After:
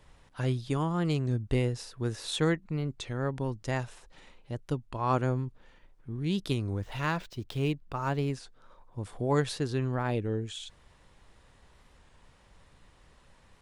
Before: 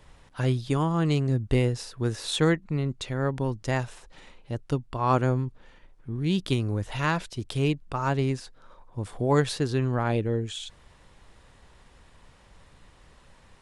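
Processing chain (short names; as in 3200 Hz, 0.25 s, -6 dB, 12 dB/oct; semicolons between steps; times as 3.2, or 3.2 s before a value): 6.72–8.33 median filter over 5 samples; record warp 33 1/3 rpm, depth 100 cents; gain -4.5 dB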